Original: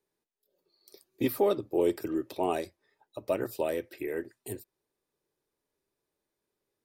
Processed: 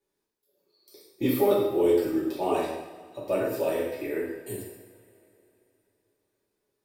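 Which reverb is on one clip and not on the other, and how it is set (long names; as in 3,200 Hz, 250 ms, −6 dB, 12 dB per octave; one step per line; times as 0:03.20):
coupled-rooms reverb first 0.86 s, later 3.3 s, from −19 dB, DRR −6.5 dB
level −3.5 dB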